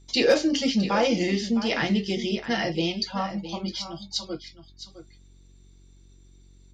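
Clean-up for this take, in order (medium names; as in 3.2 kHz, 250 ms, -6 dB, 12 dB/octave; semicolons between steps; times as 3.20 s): clip repair -10.5 dBFS; de-hum 46.4 Hz, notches 8; inverse comb 661 ms -12.5 dB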